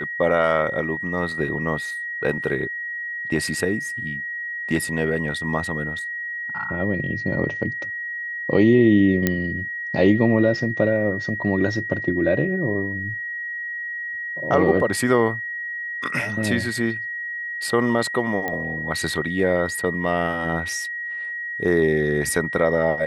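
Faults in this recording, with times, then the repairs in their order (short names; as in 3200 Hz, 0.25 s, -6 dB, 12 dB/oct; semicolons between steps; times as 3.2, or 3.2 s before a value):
tone 1900 Hz -27 dBFS
9.27 pop -5 dBFS
18.48 pop -13 dBFS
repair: de-click; notch 1900 Hz, Q 30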